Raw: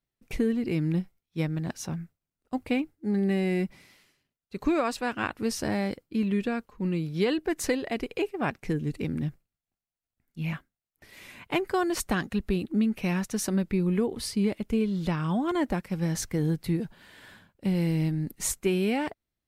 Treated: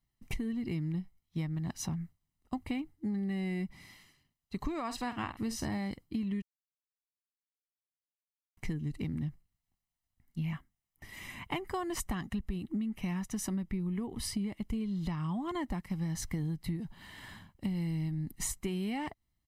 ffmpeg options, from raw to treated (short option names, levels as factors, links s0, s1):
-filter_complex "[0:a]asettb=1/sr,asplit=3[s0][s1][s2];[s0]atrim=end=4.844[s3];[s1]atrim=start=4.84:end=5.78,asetpts=PTS-STARTPTS,afade=t=in:d=0.004:c=qsin,afade=t=out:st=0.936:d=0.004:c=qsin,asplit=2[s4][s5];[s5]adelay=49,volume=0.251[s6];[s4][s6]amix=inputs=2:normalize=0,atrim=end_sample=41454[s7];[s2]atrim=start=5.776[s8];[s3][s7]acrossfade=d=0.004:c1=hsin:c2=qsin[s9];[s9][s8]acrossfade=d=0.004:c1=qsin:c2=hsin,asettb=1/sr,asplit=3[s10][s11][s12];[s10]atrim=end=10.454[s13];[s11]atrim=start=10.45:end=14.58,asetpts=PTS-STARTPTS,afade=t=in:d=0.004:c=qsin,afade=t=out:st=4.126:d=0.004:c=qsin,equalizer=f=4300:w=5.4:g=-6.5[s14];[s12]atrim=start=14.576[s15];[s13][s14]acrossfade=d=0.004:c1=hsin:c2=qsin[s16];[s16][s15]acrossfade=d=0.004:c1=qsin:c2=hsin,asplit=3[s17][s18][s19];[s17]atrim=end=6.42,asetpts=PTS-STARTPTS,afade=t=out:st=6.416:d=0.004:c=hsin[s20];[s18]atrim=start=6.42:end=8.57,asetpts=PTS-STARTPTS,volume=0[s21];[s19]atrim=start=8.57,asetpts=PTS-STARTPTS,afade=t=in:d=0.004:c=hsin[s22];[s20][s21][s22]concat=n=3:v=0:a=1,lowshelf=f=150:g=5.5,aecho=1:1:1:0.59,acompressor=threshold=0.0224:ratio=6"